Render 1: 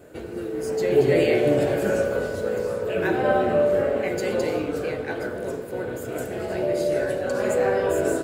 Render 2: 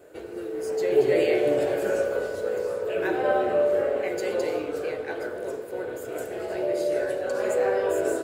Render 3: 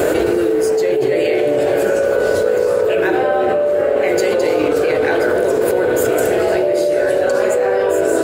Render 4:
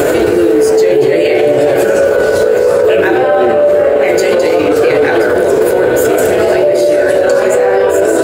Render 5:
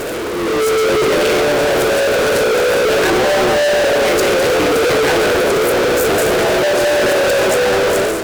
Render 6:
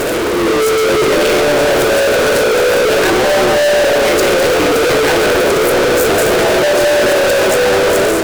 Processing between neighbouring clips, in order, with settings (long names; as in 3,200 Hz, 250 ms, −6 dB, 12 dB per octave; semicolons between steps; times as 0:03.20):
low shelf with overshoot 290 Hz −7.5 dB, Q 1.5; level −3.5 dB
envelope flattener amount 100%
flanger 0.6 Hz, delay 6.6 ms, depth 9.4 ms, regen +59%; boost into a limiter +15.5 dB; level −1 dB
fuzz pedal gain 28 dB, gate −34 dBFS; automatic gain control gain up to 11.5 dB; level −8.5 dB
soft clipping −18 dBFS, distortion −20 dB; on a send at −17 dB: convolution reverb RT60 0.55 s, pre-delay 3 ms; on the sum: level +7.5 dB